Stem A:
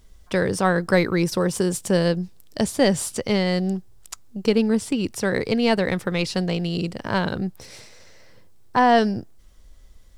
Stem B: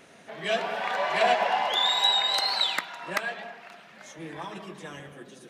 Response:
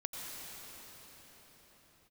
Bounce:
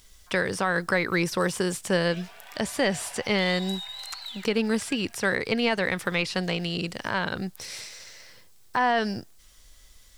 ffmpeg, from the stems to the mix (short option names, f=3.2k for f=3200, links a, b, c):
-filter_complex "[0:a]acrossover=split=2600[a][b];[b]acompressor=threshold=-43dB:ratio=4:attack=1:release=60[c];[a][c]amix=inputs=2:normalize=0,volume=1.5dB[d];[1:a]asoftclip=type=tanh:threshold=-18dB,adelay=1650,volume=-18dB[e];[d][e]amix=inputs=2:normalize=0,tiltshelf=f=1.1k:g=-8,alimiter=limit=-13dB:level=0:latency=1:release=159"